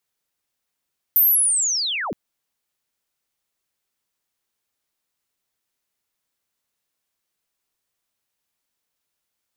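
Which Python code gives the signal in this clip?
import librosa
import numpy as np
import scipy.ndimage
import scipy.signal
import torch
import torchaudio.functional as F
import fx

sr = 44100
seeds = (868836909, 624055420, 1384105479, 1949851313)

y = fx.chirp(sr, length_s=0.97, from_hz=14000.0, to_hz=120.0, law='linear', from_db=-11.5, to_db=-24.5)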